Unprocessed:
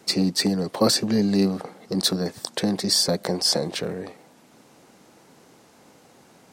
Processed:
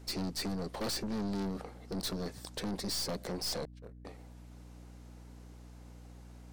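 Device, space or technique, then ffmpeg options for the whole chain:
valve amplifier with mains hum: -filter_complex "[0:a]asettb=1/sr,asplit=3[link_01][link_02][link_03];[link_01]atrim=end=3.654[link_04];[link_02]atrim=start=3.65:end=4.05,asetpts=PTS-STARTPTS,afade=type=in:duration=0.004:curve=qsin,afade=type=out:start_time=0.396:duration=0.004:curve=qsin,agate=range=-38dB:threshold=-24dB:ratio=16:detection=peak[link_05];[link_03]atrim=start=4.046[link_06];[link_04][link_05]acrossfade=duration=0.004:curve1=hsin:curve2=qsin[link_07];[link_07][link_06]acrossfade=duration=0.004:curve1=qsin:curve2=hsin,aeval=exprs='(tanh(20*val(0)+0.45)-tanh(0.45))/20':channel_layout=same,aeval=exprs='val(0)+0.00708*(sin(2*PI*60*n/s)+sin(2*PI*2*60*n/s)/2+sin(2*PI*3*60*n/s)/3+sin(2*PI*4*60*n/s)/4+sin(2*PI*5*60*n/s)/5)':channel_layout=same,volume=-7dB"

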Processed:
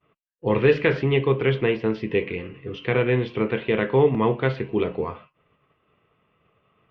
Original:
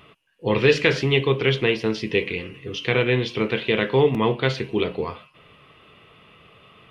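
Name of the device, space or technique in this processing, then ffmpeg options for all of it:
hearing-loss simulation: -af "lowpass=1900,agate=range=-33dB:threshold=-43dB:ratio=3:detection=peak"

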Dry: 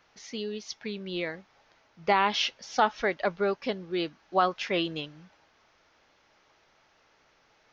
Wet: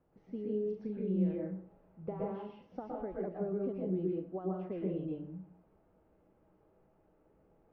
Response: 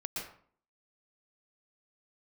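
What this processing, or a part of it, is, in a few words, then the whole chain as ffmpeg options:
television next door: -filter_complex "[0:a]equalizer=frequency=2900:width_type=o:width=0.3:gain=5,asettb=1/sr,asplit=3[link_01][link_02][link_03];[link_01]atrim=end=0.514[link_04];[link_02]atrim=start=0.51:end=2.36,asetpts=PTS-STARTPTS,afade=type=in:duration=0.004:curve=qsin,afade=type=out:start_time=1.846:duration=0.004:curve=qsin,asplit=2[link_05][link_06];[link_06]adelay=38,volume=-5dB[link_07];[link_05][link_07]amix=inputs=2:normalize=0,atrim=end_sample=81585[link_08];[link_03]atrim=start=2.356[link_09];[link_04][link_08]acrossfade=duration=0.004:curve1=hsin:curve2=qsin[link_10];[link_10][link_09]acrossfade=duration=0.004:curve1=qsin:curve2=hsin,acompressor=threshold=-33dB:ratio=6,lowpass=410[link_11];[1:a]atrim=start_sample=2205[link_12];[link_11][link_12]afir=irnorm=-1:irlink=0,volume=3.5dB"

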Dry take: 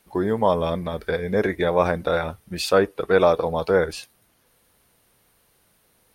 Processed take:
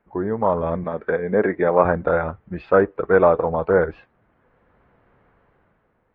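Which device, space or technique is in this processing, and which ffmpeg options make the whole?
action camera in a waterproof case: -filter_complex "[0:a]asettb=1/sr,asplit=3[link_01][link_02][link_03];[link_01]atrim=end=0.844[link_04];[link_02]atrim=start=0.84:end=1.85,asetpts=PTS-STARTPTS,afade=type=in:duration=0.004:curve=qsin,afade=type=out:start_time=1.006:duration=0.004:curve=qsin,highpass=170[link_05];[link_03]atrim=start=1.846[link_06];[link_04][link_05]acrossfade=duration=0.004:curve1=hsin:curve2=qsin[link_07];[link_07][link_06]acrossfade=duration=0.004:curve1=qsin:curve2=hsin,lowpass=frequency=1800:width=0.5412,lowpass=frequency=1800:width=1.3066,dynaudnorm=framelen=160:gausssize=9:maxgain=9.5dB,volume=-1.5dB" -ar 48000 -c:a aac -b:a 48k

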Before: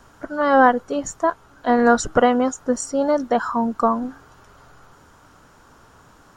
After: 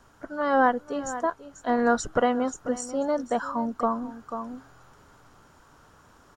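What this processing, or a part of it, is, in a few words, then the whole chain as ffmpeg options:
ducked delay: -filter_complex "[0:a]asplit=3[link_01][link_02][link_03];[link_02]adelay=490,volume=-2.5dB[link_04];[link_03]apad=whole_len=302203[link_05];[link_04][link_05]sidechaincompress=threshold=-31dB:ratio=8:attack=40:release=601[link_06];[link_01][link_06]amix=inputs=2:normalize=0,volume=-7dB"

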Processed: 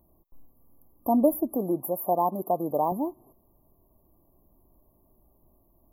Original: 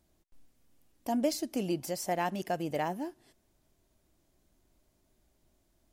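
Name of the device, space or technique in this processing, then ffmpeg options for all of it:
presence and air boost: -filter_complex "[0:a]equalizer=frequency=3000:width_type=o:width=1.9:gain=4.5,highshelf=frequency=9500:gain=6,asettb=1/sr,asplit=3[link_01][link_02][link_03];[link_01]atrim=end=1.554[link_04];[link_02]atrim=start=1.55:end=2.92,asetpts=PTS-STARTPTS,afade=type=in:duration=0.004:curve=qsin,afade=type=out:start_time=1.366:duration=0.004:curve=qsin,highpass=frequency=330:poles=1[link_05];[link_03]atrim=start=2.916[link_06];[link_04][link_05]acrossfade=duration=0.004:curve1=hsin:curve2=qsin[link_07];[link_07][link_06]acrossfade=duration=0.004:curve1=qsin:curve2=hsin,afftfilt=real='re*(1-between(b*sr/4096,1200,11000))':imag='im*(1-between(b*sr/4096,1200,11000))':win_size=4096:overlap=0.75,volume=8dB"

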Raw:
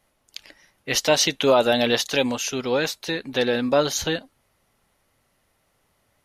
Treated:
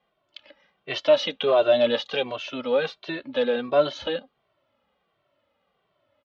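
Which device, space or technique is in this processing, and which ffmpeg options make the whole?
barber-pole flanger into a guitar amplifier: -filter_complex "[0:a]asplit=2[link_01][link_02];[link_02]adelay=2.1,afreqshift=-1.4[link_03];[link_01][link_03]amix=inputs=2:normalize=1,asoftclip=type=tanh:threshold=-12.5dB,highpass=79,equalizer=frequency=83:width_type=q:width=4:gain=-10,equalizer=frequency=130:width_type=q:width=4:gain=-5,equalizer=frequency=580:width_type=q:width=4:gain=9,equalizer=frequency=1200:width_type=q:width=4:gain=5,equalizer=frequency=1900:width_type=q:width=4:gain=-3,equalizer=frequency=3200:width_type=q:width=4:gain=5,lowpass=frequency=3700:width=0.5412,lowpass=frequency=3700:width=1.3066,volume=-2dB"

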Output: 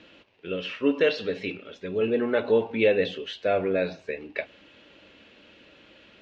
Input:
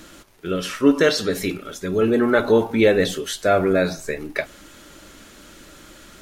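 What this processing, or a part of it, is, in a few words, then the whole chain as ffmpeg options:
guitar cabinet: -af "highpass=92,equalizer=frequency=150:width_type=q:width=4:gain=-6,equalizer=frequency=340:width_type=q:width=4:gain=-3,equalizer=frequency=490:width_type=q:width=4:gain=6,equalizer=frequency=1300:width_type=q:width=4:gain=-7,equalizer=frequency=2700:width_type=q:width=4:gain=10,lowpass=frequency=4000:width=0.5412,lowpass=frequency=4000:width=1.3066,volume=-8dB"

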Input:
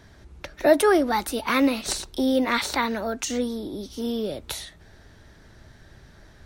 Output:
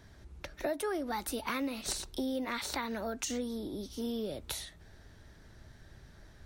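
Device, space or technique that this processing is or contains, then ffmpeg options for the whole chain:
ASMR close-microphone chain: -af "lowshelf=frequency=150:gain=3.5,acompressor=threshold=-25dB:ratio=5,highshelf=frequency=7500:gain=4,volume=-7dB"

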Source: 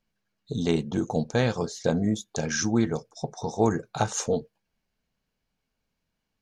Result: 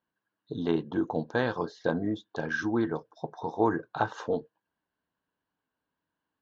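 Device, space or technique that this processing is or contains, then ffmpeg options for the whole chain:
guitar cabinet: -filter_complex "[0:a]highpass=110,equalizer=frequency=130:width_type=q:width=4:gain=-5,equalizer=frequency=210:width_type=q:width=4:gain=-7,equalizer=frequency=300:width_type=q:width=4:gain=8,equalizer=frequency=1000:width_type=q:width=4:gain=9,equalizer=frequency=1600:width_type=q:width=4:gain=7,equalizer=frequency=2300:width_type=q:width=4:gain=-10,lowpass=frequency=3600:width=0.5412,lowpass=frequency=3600:width=1.3066,asettb=1/sr,asplit=3[link_01][link_02][link_03];[link_01]atrim=end=1.274[link_04];[link_02]atrim=start=1.27:end=1.92,asetpts=PTS-STARTPTS,afade=type=in:duration=0.004:curve=qsin,afade=type=out:start_time=0.646:duration=0.004:curve=qsin,equalizer=frequency=6600:width_type=o:width=1.2:gain=5[link_05];[link_03]atrim=start=1.916[link_06];[link_04][link_05]acrossfade=duration=0.004:curve1=hsin:curve2=qsin[link_07];[link_07][link_06]acrossfade=duration=0.004:curve1=qsin:curve2=hsin,volume=-4dB"

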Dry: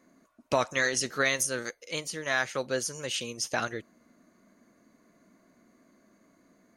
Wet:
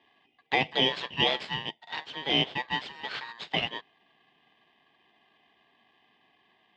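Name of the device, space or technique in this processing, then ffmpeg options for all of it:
ring modulator pedal into a guitar cabinet: -af "bass=frequency=250:gain=-14,treble=frequency=4000:gain=-2,aeval=exprs='val(0)*sgn(sin(2*PI*1400*n/s))':channel_layout=same,highpass=110,equalizer=frequency=150:width_type=q:width=4:gain=6,equalizer=frequency=230:width_type=q:width=4:gain=3,equalizer=frequency=420:width_type=q:width=4:gain=5,equalizer=frequency=680:width_type=q:width=4:gain=3,equalizer=frequency=1300:width_type=q:width=4:gain=-5,equalizer=frequency=3100:width_type=q:width=4:gain=8,lowpass=frequency=3500:width=0.5412,lowpass=frequency=3500:width=1.3066"

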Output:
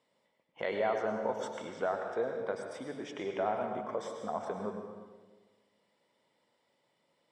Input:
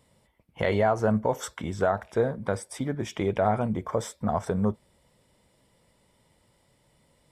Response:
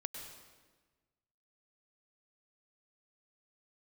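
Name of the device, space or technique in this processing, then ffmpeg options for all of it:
supermarket ceiling speaker: -filter_complex "[0:a]highpass=320,lowpass=5200[link_01];[1:a]atrim=start_sample=2205[link_02];[link_01][link_02]afir=irnorm=-1:irlink=0,volume=-5dB"

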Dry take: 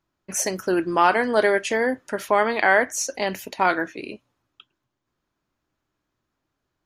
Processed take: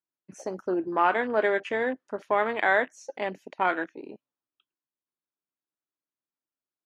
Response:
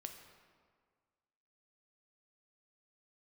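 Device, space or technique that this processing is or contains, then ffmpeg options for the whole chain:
over-cleaned archive recording: -af "highpass=200,lowpass=6900,afwtdn=0.0282,volume=-5dB"

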